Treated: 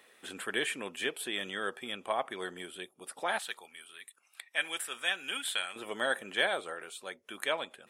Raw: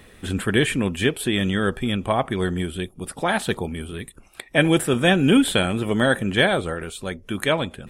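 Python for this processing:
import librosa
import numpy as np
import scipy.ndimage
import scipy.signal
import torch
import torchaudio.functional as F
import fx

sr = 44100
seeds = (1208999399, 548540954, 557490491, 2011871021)

y = fx.highpass(x, sr, hz=fx.steps((0.0, 520.0), (3.39, 1300.0), (5.76, 570.0)), slope=12)
y = F.gain(torch.from_numpy(y), -9.0).numpy()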